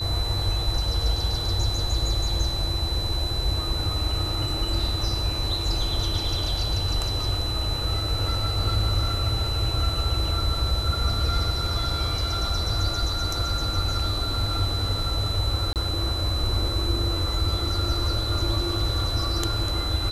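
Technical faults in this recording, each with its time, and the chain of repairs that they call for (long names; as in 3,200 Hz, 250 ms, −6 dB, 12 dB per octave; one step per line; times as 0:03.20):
whistle 4,000 Hz −29 dBFS
0:15.73–0:15.76: drop-out 28 ms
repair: notch filter 4,000 Hz, Q 30
repair the gap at 0:15.73, 28 ms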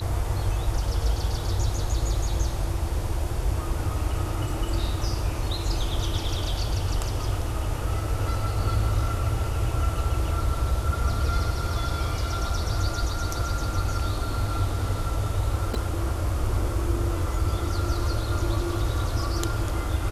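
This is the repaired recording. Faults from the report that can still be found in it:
none of them is left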